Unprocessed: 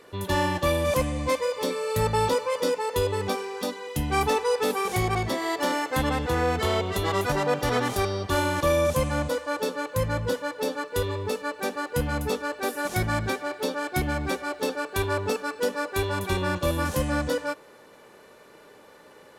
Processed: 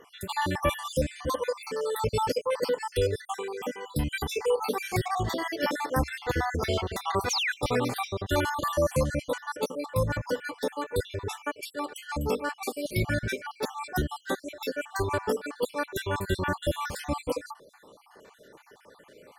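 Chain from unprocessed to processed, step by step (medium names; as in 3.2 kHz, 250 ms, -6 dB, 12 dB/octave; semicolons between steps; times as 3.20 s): random holes in the spectrogram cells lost 57%; 5.16–7.49 s: peaking EQ 69 Hz +4.5 dB 0.51 oct; 7.30–7.52 s: painted sound fall 1.4–7.1 kHz -28 dBFS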